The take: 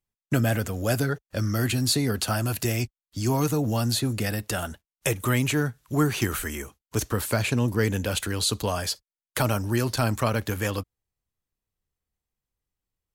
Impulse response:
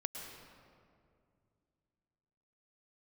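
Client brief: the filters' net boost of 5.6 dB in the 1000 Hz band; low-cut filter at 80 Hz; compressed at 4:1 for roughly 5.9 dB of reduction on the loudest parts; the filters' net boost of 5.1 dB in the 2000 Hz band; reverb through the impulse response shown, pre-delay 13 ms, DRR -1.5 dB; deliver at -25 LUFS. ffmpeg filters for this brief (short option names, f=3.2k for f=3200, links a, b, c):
-filter_complex "[0:a]highpass=80,equalizer=f=1k:t=o:g=6,equalizer=f=2k:t=o:g=4.5,acompressor=threshold=-23dB:ratio=4,asplit=2[a][b];[1:a]atrim=start_sample=2205,adelay=13[c];[b][c]afir=irnorm=-1:irlink=0,volume=1.5dB[d];[a][d]amix=inputs=2:normalize=0,volume=-0.5dB"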